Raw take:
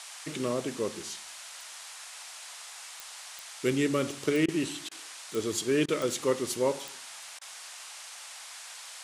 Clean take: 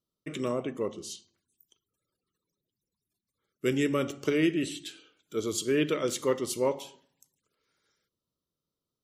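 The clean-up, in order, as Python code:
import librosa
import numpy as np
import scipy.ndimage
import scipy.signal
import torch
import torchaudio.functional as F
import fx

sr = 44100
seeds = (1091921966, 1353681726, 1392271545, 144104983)

y = fx.fix_declick_ar(x, sr, threshold=10.0)
y = fx.fix_interpolate(y, sr, at_s=(4.46, 4.89, 5.86, 7.39), length_ms=22.0)
y = fx.noise_reduce(y, sr, print_start_s=7.3, print_end_s=7.8, reduce_db=30.0)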